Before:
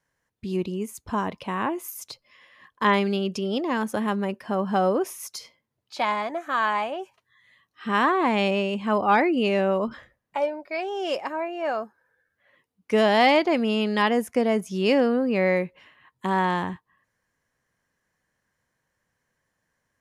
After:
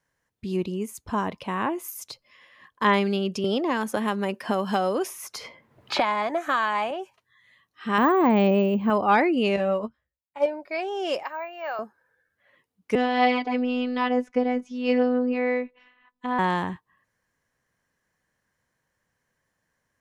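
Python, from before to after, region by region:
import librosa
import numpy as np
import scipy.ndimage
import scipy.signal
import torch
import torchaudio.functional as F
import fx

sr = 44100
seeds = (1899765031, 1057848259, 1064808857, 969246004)

y = fx.chain(x, sr, fx.low_shelf(hz=140.0, db=-9.0),
    fx.band_squash(depth_pct=100), at=(3.44, 6.91))
y = fx.chain(y, sr, fx.highpass(hz=230.0, slope=6),
    fx.tilt_eq(slope=-4.0),
    fx.resample_bad(factor=2, down='filtered', up='hold'), at=(7.98, 8.9))
y = fx.chain(y, sr, fx.peak_eq(hz=61.0, db=13.0, octaves=1.4),
    fx.doubler(ms=14.0, db=-4.0),
    fx.upward_expand(threshold_db=-39.0, expansion=2.5), at=(9.56, 10.46))
y = fx.chain(y, sr, fx.highpass(hz=800.0, slope=12),
    fx.resample_bad(factor=2, down='none', up='zero_stuff'),
    fx.air_absorb(metres=99.0), at=(11.23, 11.79))
y = fx.chain(y, sr, fx.robotise(hz=249.0),
    fx.air_absorb(metres=150.0), at=(12.95, 16.39))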